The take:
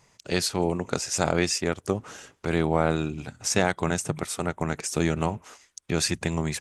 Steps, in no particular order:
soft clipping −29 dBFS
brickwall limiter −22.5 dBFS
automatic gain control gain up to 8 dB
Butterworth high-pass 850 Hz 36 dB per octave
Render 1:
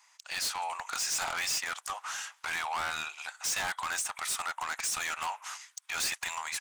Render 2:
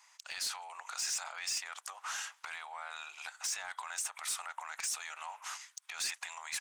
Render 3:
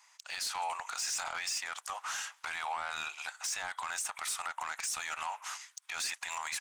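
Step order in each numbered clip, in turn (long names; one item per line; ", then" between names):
Butterworth high-pass, then automatic gain control, then soft clipping, then brickwall limiter
automatic gain control, then brickwall limiter, then Butterworth high-pass, then soft clipping
Butterworth high-pass, then automatic gain control, then brickwall limiter, then soft clipping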